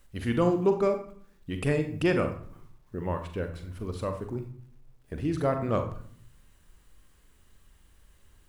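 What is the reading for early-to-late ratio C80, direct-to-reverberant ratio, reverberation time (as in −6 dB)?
13.0 dB, 6.0 dB, 0.60 s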